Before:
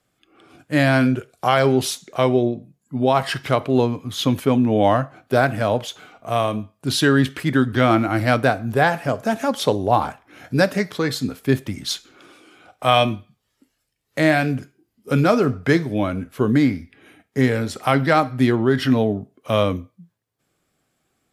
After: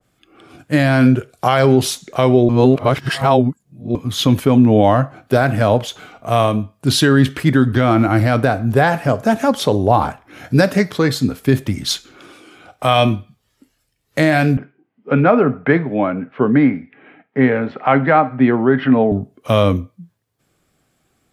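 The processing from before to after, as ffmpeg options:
-filter_complex "[0:a]asettb=1/sr,asplit=3[a][b][c];[a]atrim=end=14.574[d];[b]atrim=start=14.57:end=19.12,asetpts=PTS-STARTPTS,afade=t=in:d=0.004:c=qsin,afade=t=out:st=4.546:d=0.004:c=qsin,highpass=f=160:w=0.5412,highpass=f=160:w=1.3066,equalizer=f=200:t=q:w=4:g=-4,equalizer=f=340:t=q:w=4:g=-5,equalizer=f=790:t=q:w=4:g=3,lowpass=f=2.5k:w=0.5412,lowpass=f=2.5k:w=1.3066[e];[c]atrim=start=19.116[f];[d][e]acrossfade=d=0.004:c1=hsin:c2=qsin[g];[g][f]acrossfade=d=0.004:c1=qsin:c2=hsin,asplit=3[h][i][j];[h]atrim=end=2.492[k];[i]atrim=start=2.488:end=3.952,asetpts=PTS-STARTPTS,areverse[l];[j]atrim=start=3.948[m];[k][l]acrossfade=d=0.004:c1=hsin:c2=hsin[n];[n][m]acrossfade=d=0.004:c1=hsin:c2=hsin,lowshelf=f=140:g=5.5,alimiter=level_in=6.5dB:limit=-1dB:release=50:level=0:latency=1,adynamicequalizer=threshold=0.0355:dfrequency=1600:dqfactor=0.7:tfrequency=1600:tqfactor=0.7:attack=5:release=100:ratio=0.375:range=1.5:mode=cutabove:tftype=highshelf,volume=-1dB"

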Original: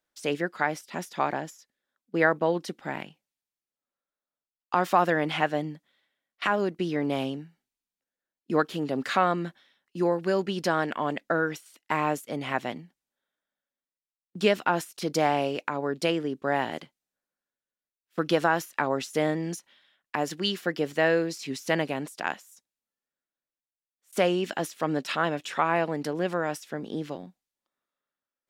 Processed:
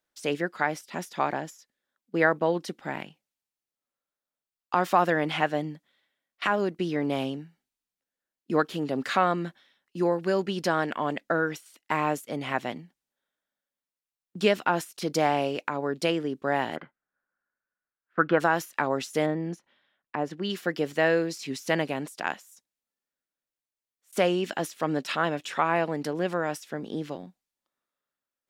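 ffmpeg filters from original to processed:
-filter_complex "[0:a]asplit=3[a][b][c];[a]afade=t=out:st=16.75:d=0.02[d];[b]lowpass=f=1.5k:t=q:w=4.4,afade=t=in:st=16.75:d=0.02,afade=t=out:st=18.39:d=0.02[e];[c]afade=t=in:st=18.39:d=0.02[f];[d][e][f]amix=inputs=3:normalize=0,asplit=3[g][h][i];[g]afade=t=out:st=19.25:d=0.02[j];[h]lowpass=f=1.2k:p=1,afade=t=in:st=19.25:d=0.02,afade=t=out:st=20.49:d=0.02[k];[i]afade=t=in:st=20.49:d=0.02[l];[j][k][l]amix=inputs=3:normalize=0"

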